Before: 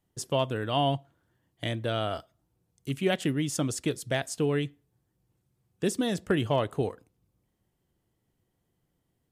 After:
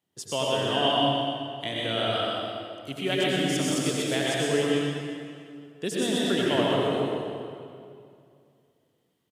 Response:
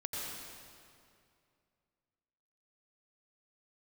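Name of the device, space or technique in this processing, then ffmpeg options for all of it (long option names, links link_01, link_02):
PA in a hall: -filter_complex "[0:a]highpass=180,equalizer=frequency=3300:width_type=o:width=1.2:gain=6,aecho=1:1:125:0.501[link_01];[1:a]atrim=start_sample=2205[link_02];[link_01][link_02]afir=irnorm=-1:irlink=0"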